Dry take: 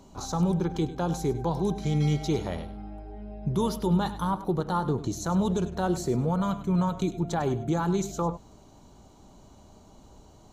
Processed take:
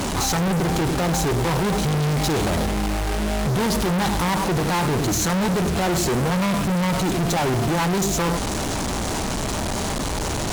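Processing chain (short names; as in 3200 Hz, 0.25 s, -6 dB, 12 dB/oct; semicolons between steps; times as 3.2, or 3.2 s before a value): delta modulation 64 kbps, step -39 dBFS; fuzz box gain 45 dB, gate -51 dBFS; gain -6.5 dB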